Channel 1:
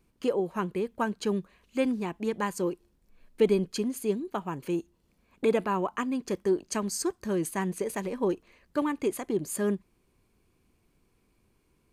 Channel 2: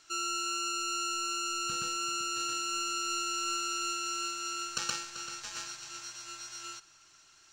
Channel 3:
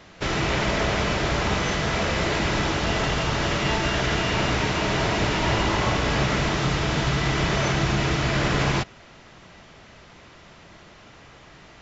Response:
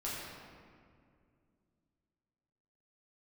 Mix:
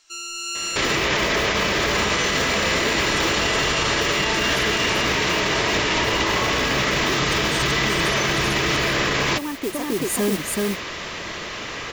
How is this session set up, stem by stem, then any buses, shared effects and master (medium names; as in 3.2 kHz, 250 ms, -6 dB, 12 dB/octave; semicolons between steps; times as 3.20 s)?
-1.5 dB, 0.60 s, no send, echo send -3.5 dB, compression, threshold -28 dBFS, peak gain reduction 10.5 dB; modulation noise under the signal 12 dB
+2.5 dB, 0.00 s, muted 0.97–1.93 s, no send, no echo send, peaking EQ 150 Hz -11 dB 2.7 oct
-3.5 dB, 0.55 s, no send, no echo send, FFT filter 150 Hz 0 dB, 470 Hz +9 dB, 770 Hz +3 dB, 1.3 kHz +13 dB, 2.1 kHz +11 dB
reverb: none
echo: delay 381 ms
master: peaking EQ 1.4 kHz -10 dB 0.2 oct; level rider gain up to 12.5 dB; peak limiter -12 dBFS, peak gain reduction 10.5 dB